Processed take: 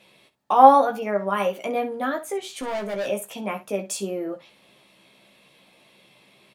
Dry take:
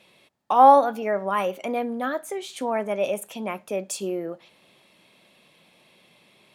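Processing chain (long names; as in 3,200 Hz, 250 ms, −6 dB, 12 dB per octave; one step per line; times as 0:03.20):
0:02.48–0:03.08: hard clipping −27.5 dBFS, distortion −17 dB
ambience of single reflections 15 ms −4 dB, 66 ms −14 dB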